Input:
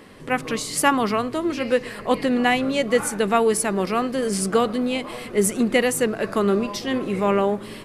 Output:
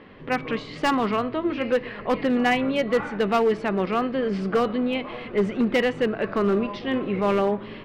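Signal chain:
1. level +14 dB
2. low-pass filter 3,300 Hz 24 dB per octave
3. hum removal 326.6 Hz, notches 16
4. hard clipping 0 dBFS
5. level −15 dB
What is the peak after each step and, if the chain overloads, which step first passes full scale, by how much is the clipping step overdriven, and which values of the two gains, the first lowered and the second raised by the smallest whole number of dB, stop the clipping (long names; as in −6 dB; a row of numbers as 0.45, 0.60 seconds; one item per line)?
+9.5, +9.0, +9.0, 0.0, −15.0 dBFS
step 1, 9.0 dB
step 1 +5 dB, step 5 −6 dB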